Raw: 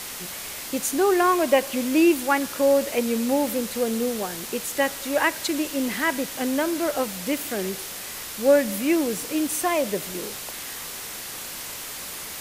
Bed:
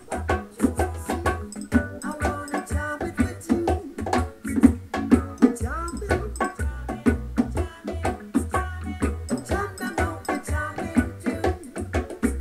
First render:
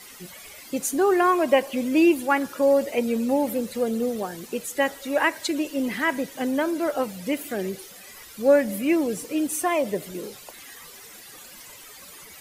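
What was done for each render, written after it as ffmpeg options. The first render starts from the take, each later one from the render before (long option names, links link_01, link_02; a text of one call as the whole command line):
ffmpeg -i in.wav -af "afftdn=noise_reduction=14:noise_floor=-35" out.wav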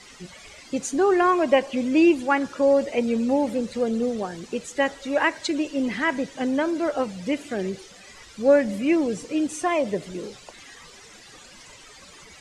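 ffmpeg -i in.wav -af "lowpass=frequency=7500:width=0.5412,lowpass=frequency=7500:width=1.3066,lowshelf=frequency=120:gain=7" out.wav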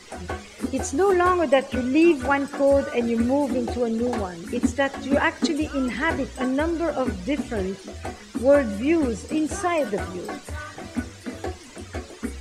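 ffmpeg -i in.wav -i bed.wav -filter_complex "[1:a]volume=-7.5dB[link_01];[0:a][link_01]amix=inputs=2:normalize=0" out.wav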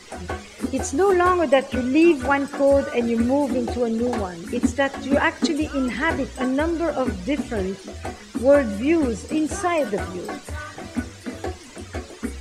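ffmpeg -i in.wav -af "volume=1.5dB" out.wav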